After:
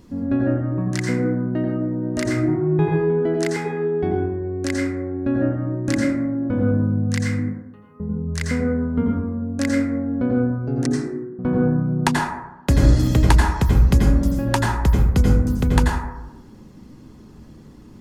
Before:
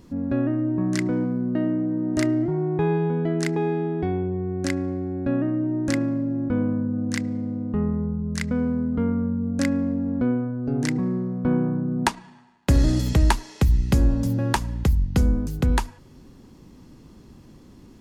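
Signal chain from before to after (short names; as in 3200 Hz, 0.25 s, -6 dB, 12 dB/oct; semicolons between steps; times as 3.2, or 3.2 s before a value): reverb removal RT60 0.59 s; 7.39–8 differentiator; 10.86–11.39 Butterworth band-pass 330 Hz, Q 3.4; plate-style reverb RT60 0.97 s, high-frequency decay 0.35×, pre-delay 75 ms, DRR -1.5 dB; gain +1 dB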